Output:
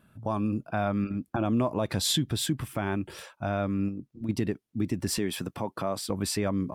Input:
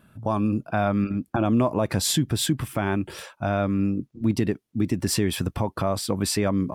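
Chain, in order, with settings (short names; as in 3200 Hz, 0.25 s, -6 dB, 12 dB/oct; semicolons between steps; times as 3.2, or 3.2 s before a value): 1.75–2.39 bell 3600 Hz +7 dB 0.5 oct; 3.88–4.29 compressor, threshold -27 dBFS, peak gain reduction 9.5 dB; 5.18–6.1 HPF 160 Hz 12 dB/oct; gain -5 dB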